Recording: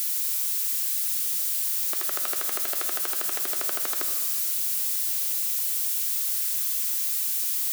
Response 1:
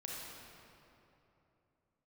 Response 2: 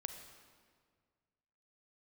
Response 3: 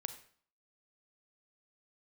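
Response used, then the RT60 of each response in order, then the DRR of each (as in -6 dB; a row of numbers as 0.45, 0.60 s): 2; 3.0, 1.9, 0.50 s; -4.0, 6.5, 9.0 dB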